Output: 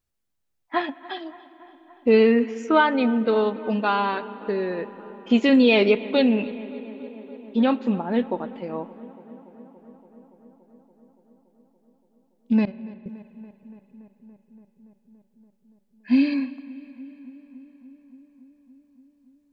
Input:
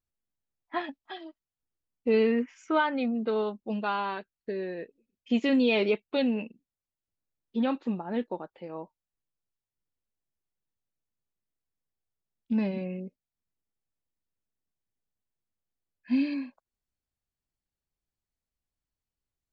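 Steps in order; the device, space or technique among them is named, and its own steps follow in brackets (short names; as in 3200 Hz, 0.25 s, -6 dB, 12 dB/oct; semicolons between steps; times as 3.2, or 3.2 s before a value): 12.65–13.06 gate -27 dBFS, range -25 dB; dub delay into a spring reverb (darkening echo 0.285 s, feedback 80%, low-pass 2900 Hz, level -20 dB; spring tank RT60 4 s, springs 40/49 ms, chirp 65 ms, DRR 17.5 dB); gain +7.5 dB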